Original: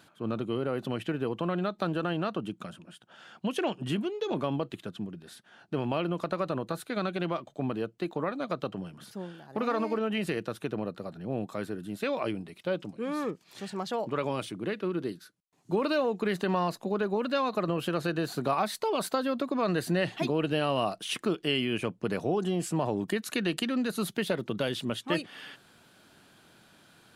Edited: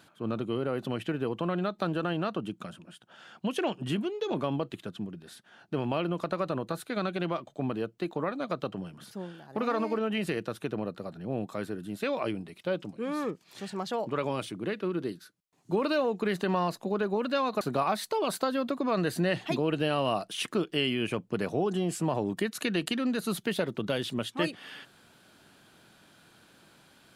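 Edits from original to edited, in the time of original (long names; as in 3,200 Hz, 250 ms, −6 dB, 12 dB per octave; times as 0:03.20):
0:17.61–0:18.32: remove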